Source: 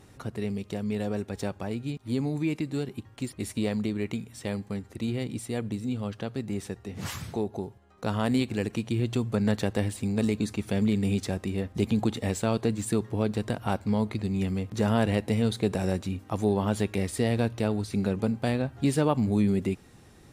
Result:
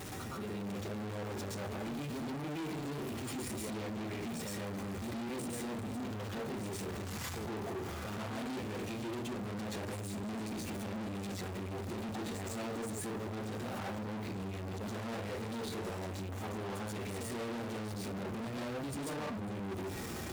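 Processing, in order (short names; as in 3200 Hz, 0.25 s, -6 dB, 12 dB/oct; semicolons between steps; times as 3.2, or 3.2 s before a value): zero-crossing step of -35 dBFS; AGC; reverb RT60 0.45 s, pre-delay 0.109 s, DRR -7.5 dB; soft clip -20 dBFS, distortion -4 dB; HPF 71 Hz 6 dB/oct; limiter -30.5 dBFS, peak gain reduction 15 dB; gain -4.5 dB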